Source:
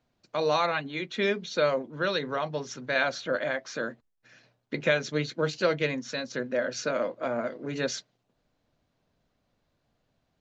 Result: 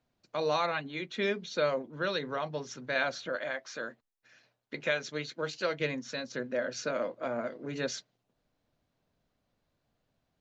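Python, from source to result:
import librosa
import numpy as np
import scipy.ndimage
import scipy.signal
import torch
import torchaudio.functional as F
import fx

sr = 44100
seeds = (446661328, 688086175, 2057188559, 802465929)

y = fx.low_shelf(x, sr, hz=380.0, db=-8.5, at=(3.29, 5.8))
y = y * 10.0 ** (-4.0 / 20.0)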